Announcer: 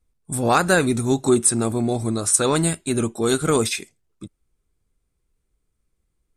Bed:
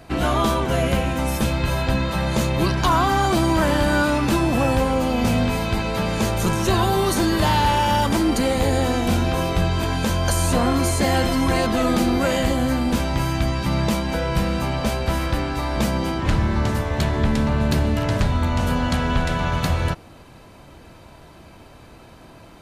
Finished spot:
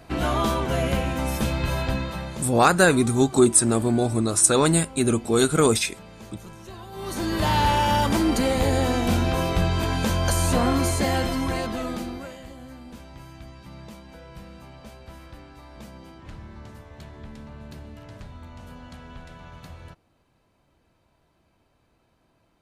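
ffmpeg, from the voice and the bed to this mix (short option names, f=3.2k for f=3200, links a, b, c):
-filter_complex "[0:a]adelay=2100,volume=0.5dB[a];[1:a]volume=16.5dB,afade=t=out:st=1.8:d=0.71:silence=0.11885,afade=t=in:st=6.91:d=0.7:silence=0.1,afade=t=out:st=10.74:d=1.63:silence=0.105925[b];[a][b]amix=inputs=2:normalize=0"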